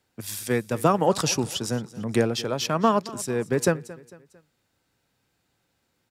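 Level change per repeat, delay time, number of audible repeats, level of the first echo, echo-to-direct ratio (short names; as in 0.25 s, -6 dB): -7.5 dB, 0.225 s, 3, -19.0 dB, -18.0 dB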